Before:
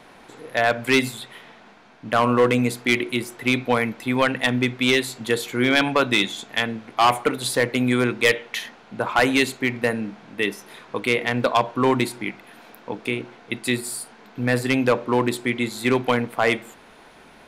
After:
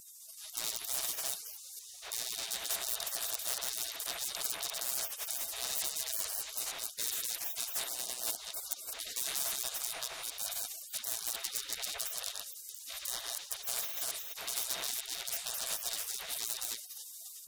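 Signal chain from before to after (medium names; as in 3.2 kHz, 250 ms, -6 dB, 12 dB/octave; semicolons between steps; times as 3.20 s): chunks repeated in reverse 224 ms, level -4 dB; level rider gain up to 13 dB; 7.84–8.40 s: inverse Chebyshev band-stop 190–680 Hz, stop band 40 dB; de-hum 60.34 Hz, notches 4; saturation -16.5 dBFS, distortion -7 dB; peaking EQ 450 Hz -10.5 dB 0.2 oct; spectral gate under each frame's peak -30 dB weak; tone controls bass -10 dB, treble +10 dB; small resonant body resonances 670/3700 Hz, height 18 dB, ringing for 45 ms; spectrum-flattening compressor 2:1; trim -2.5 dB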